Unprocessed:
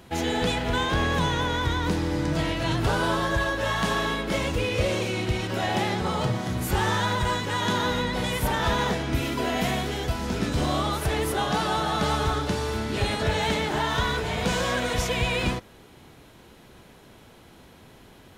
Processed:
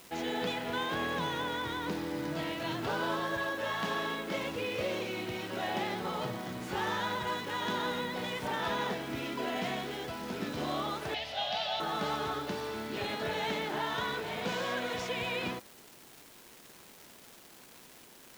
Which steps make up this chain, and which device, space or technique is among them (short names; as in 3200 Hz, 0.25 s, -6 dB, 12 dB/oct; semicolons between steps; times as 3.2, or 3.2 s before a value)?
78 rpm shellac record (BPF 200–5000 Hz; crackle 380/s -34 dBFS; white noise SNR 23 dB); 11.14–11.8 EQ curve 110 Hz 0 dB, 160 Hz -14 dB, 250 Hz -11 dB, 360 Hz -29 dB, 660 Hz +7 dB, 1100 Hz -13 dB, 2900 Hz +8 dB, 5000 Hz +5 dB, 8200 Hz -11 dB; gain -7.5 dB